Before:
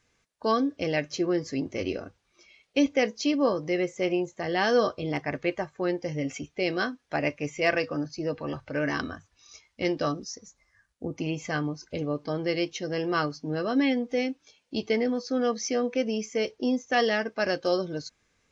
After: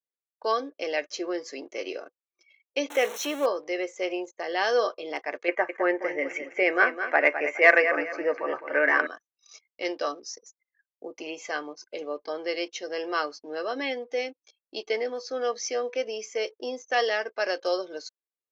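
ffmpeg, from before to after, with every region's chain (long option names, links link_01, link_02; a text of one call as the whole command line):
ffmpeg -i in.wav -filter_complex "[0:a]asettb=1/sr,asplit=3[link_01][link_02][link_03];[link_01]atrim=end=2.904[link_04];[link_02]atrim=start=2.9:end=3.46,asetpts=PTS-STARTPTS,afade=type=in:duration=0.004:curve=qsin,afade=type=out:start_time=0.556:duration=0.004:curve=qsin,aeval=exprs='val(0)+0.5*0.0355*sgn(val(0))':channel_layout=same,asuperstop=centerf=4800:order=4:qfactor=3.3[link_05];[link_03]atrim=start=3.456[link_06];[link_04][link_05]acrossfade=duration=0.004:curve1=hsin:curve2=qsin[link_07];[link_07][link_06]acrossfade=duration=0.004:curve1=qsin:curve2=hsin,asettb=1/sr,asplit=3[link_08][link_09][link_10];[link_08]atrim=end=5.484[link_11];[link_09]atrim=start=5.48:end=9.07,asetpts=PTS-STARTPTS,afade=type=in:duration=0.004:curve=qsin,afade=type=out:start_time=3.586:duration=0.004:curve=qsin,highshelf=frequency=2800:width_type=q:width=3:gain=-11.5,aecho=1:1:209|418|627:0.316|0.0949|0.0285,atrim=end_sample=158319,acontrast=33[link_12];[link_10]atrim=start=9.066[link_13];[link_11][link_12]acrossfade=duration=0.004:curve1=hsin:curve2=qsin[link_14];[link_14][link_13]acrossfade=duration=0.004:curve1=qsin:curve2=hsin,highpass=frequency=400:width=0.5412,highpass=frequency=400:width=1.3066,anlmdn=0.001" out.wav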